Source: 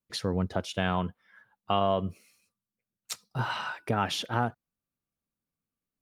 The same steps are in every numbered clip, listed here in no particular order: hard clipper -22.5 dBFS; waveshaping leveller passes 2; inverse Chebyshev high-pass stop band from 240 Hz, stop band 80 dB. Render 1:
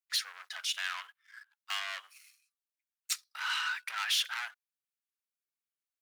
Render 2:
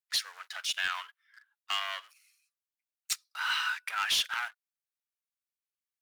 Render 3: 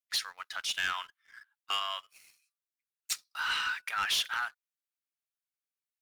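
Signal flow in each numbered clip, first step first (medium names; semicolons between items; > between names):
hard clipper > waveshaping leveller > inverse Chebyshev high-pass; waveshaping leveller > inverse Chebyshev high-pass > hard clipper; inverse Chebyshev high-pass > hard clipper > waveshaping leveller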